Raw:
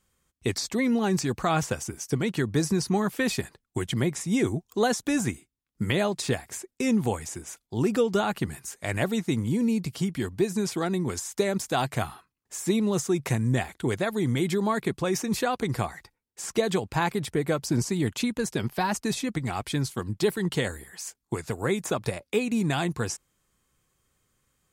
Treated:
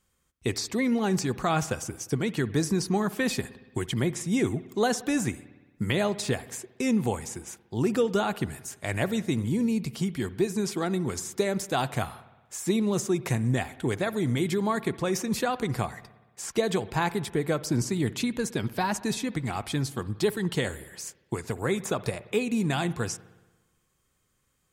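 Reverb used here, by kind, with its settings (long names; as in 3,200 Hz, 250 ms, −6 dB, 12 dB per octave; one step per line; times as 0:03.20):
spring reverb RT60 1.2 s, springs 58 ms, chirp 45 ms, DRR 16.5 dB
level −1 dB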